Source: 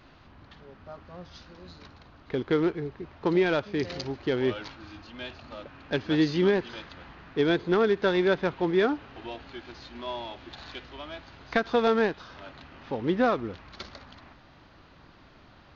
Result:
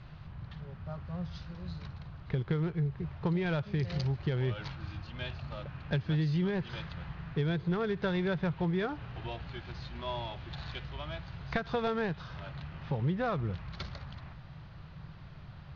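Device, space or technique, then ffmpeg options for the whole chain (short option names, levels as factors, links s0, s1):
jukebox: -af "lowpass=5300,lowshelf=f=200:t=q:w=3:g=9,acompressor=threshold=0.0447:ratio=4,volume=0.841"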